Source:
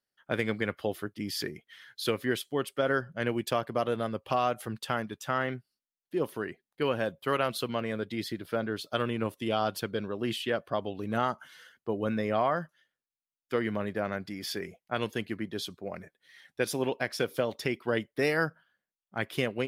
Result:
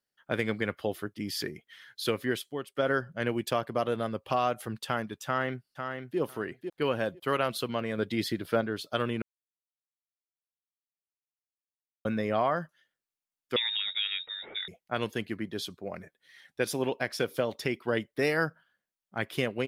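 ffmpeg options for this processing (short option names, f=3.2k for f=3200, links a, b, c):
-filter_complex "[0:a]asplit=2[a][b];[b]afade=t=in:st=5.25:d=0.01,afade=t=out:st=6.19:d=0.01,aecho=0:1:500|1000|1500:0.473151|0.0709727|0.0106459[c];[a][c]amix=inputs=2:normalize=0,asettb=1/sr,asplit=3[d][e][f];[d]atrim=end=13.564[g];[e]atrim=start=13.56:end=14.68,asetpts=PTS-STARTPTS,afade=t=in:d=0.004:c=qsin,afade=t=out:st=1.116:d=0.004:c=qsin,lowpass=f=3.3k:t=q:w=0.5098,lowpass=f=3.3k:t=q:w=0.6013,lowpass=f=3.3k:t=q:w=0.9,lowpass=f=3.3k:t=q:w=2.563,afreqshift=-3900[h];[f]atrim=start=14.676[i];[g][h]acrossfade=d=0.004:c1=hsin:c2=qsin[j];[j][i]acrossfade=d=0.004:c1=qsin:c2=hsin,asplit=6[k][l][m][n][o][p];[k]atrim=end=2.75,asetpts=PTS-STARTPTS,afade=t=out:st=2.14:d=0.61:c=qsin:silence=0.177828[q];[l]atrim=start=2.75:end=7.982,asetpts=PTS-STARTPTS,afade=t=in:d=0.004:c=hsin:silence=0.177828[r];[m]atrim=start=7.978:end=8.612,asetpts=PTS-STARTPTS,volume=4dB[s];[n]atrim=start=8.608:end=9.22,asetpts=PTS-STARTPTS,afade=t=out:st=0.608:d=0.004:c=hsin[t];[o]atrim=start=9.22:end=12.05,asetpts=PTS-STARTPTS,volume=0[u];[p]atrim=start=12.05,asetpts=PTS-STARTPTS,afade=t=in:d=0.004:c=hsin[v];[q][r]concat=n=2:v=0:a=1[w];[w][s]acrossfade=d=0.004:c1=hsin:c2=hsin[x];[t][u][v]concat=n=3:v=0:a=1[y];[x][y]acrossfade=d=0.004:c1=hsin:c2=hsin"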